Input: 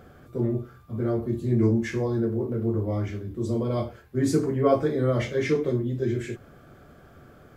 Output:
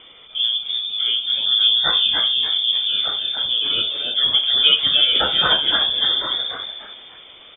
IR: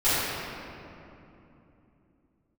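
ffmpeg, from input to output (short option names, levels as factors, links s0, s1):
-filter_complex "[0:a]aexciter=amount=10.2:drive=4.2:freq=2500,asplit=5[s0][s1][s2][s3][s4];[s1]adelay=294,afreqshift=-140,volume=0.631[s5];[s2]adelay=588,afreqshift=-280,volume=0.221[s6];[s3]adelay=882,afreqshift=-420,volume=0.0776[s7];[s4]adelay=1176,afreqshift=-560,volume=0.0269[s8];[s0][s5][s6][s7][s8]amix=inputs=5:normalize=0,lowpass=f=3100:t=q:w=0.5098,lowpass=f=3100:t=q:w=0.6013,lowpass=f=3100:t=q:w=0.9,lowpass=f=3100:t=q:w=2.563,afreqshift=-3600,volume=1.68"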